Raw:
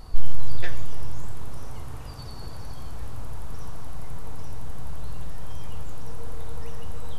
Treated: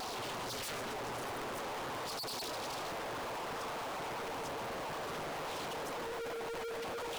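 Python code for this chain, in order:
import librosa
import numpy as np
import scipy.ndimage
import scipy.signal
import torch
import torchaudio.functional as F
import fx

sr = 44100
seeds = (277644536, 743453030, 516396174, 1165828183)

y = scipy.signal.sosfilt(scipy.signal.butter(2, 370.0, 'highpass', fs=sr, output='sos'), x)
y = fx.spec_gate(y, sr, threshold_db=-10, keep='strong')
y = (np.mod(10.0 ** (40.0 / 20.0) * y + 1.0, 2.0) - 1.0) / 10.0 ** (40.0 / 20.0)
y = fx.leveller(y, sr, passes=5)
y = fx.quant_dither(y, sr, seeds[0], bits=8, dither='none')
y = fx.doppler_dist(y, sr, depth_ms=0.8)
y = y * librosa.db_to_amplitude(2.5)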